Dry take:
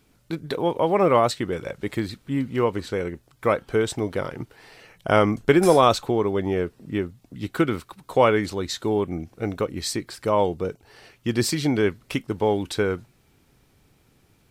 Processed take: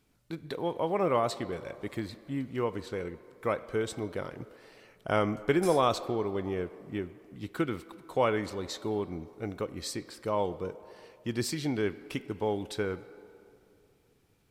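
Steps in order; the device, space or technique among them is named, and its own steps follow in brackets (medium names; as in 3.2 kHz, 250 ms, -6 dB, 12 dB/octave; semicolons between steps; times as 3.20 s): filtered reverb send (on a send: high-pass 280 Hz 12 dB/octave + low-pass 5.4 kHz + reverberation RT60 2.6 s, pre-delay 35 ms, DRR 14.5 dB); on the sum: trim -9 dB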